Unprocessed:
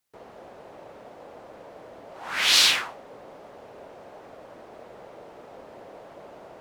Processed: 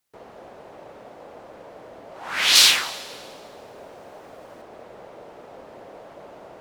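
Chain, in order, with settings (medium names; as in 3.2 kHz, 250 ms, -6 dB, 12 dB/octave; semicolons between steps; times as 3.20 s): 2.55–4.62 s: treble shelf 5.6 kHz +7 dB; plate-style reverb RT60 2 s, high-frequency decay 0.85×, pre-delay 110 ms, DRR 17 dB; trim +2 dB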